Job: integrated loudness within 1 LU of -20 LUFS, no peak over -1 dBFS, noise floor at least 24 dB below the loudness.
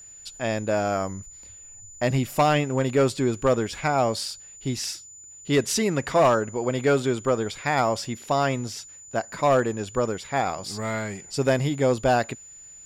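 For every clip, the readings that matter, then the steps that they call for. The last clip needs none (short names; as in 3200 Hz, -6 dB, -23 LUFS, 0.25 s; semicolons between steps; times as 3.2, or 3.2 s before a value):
clipped 0.6%; flat tops at -13.0 dBFS; steady tone 7000 Hz; tone level -43 dBFS; loudness -24.5 LUFS; peak -13.0 dBFS; loudness target -20.0 LUFS
-> clip repair -13 dBFS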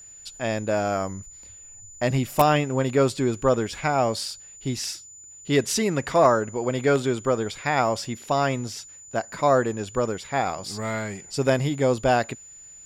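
clipped 0.0%; steady tone 7000 Hz; tone level -43 dBFS
-> notch 7000 Hz, Q 30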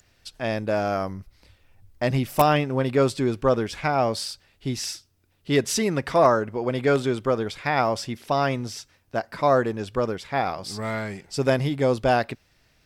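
steady tone none; loudness -24.5 LUFS; peak -4.0 dBFS; loudness target -20.0 LUFS
-> gain +4.5 dB; limiter -1 dBFS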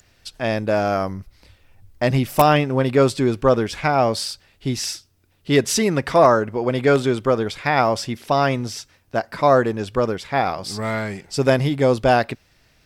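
loudness -20.0 LUFS; peak -1.0 dBFS; noise floor -59 dBFS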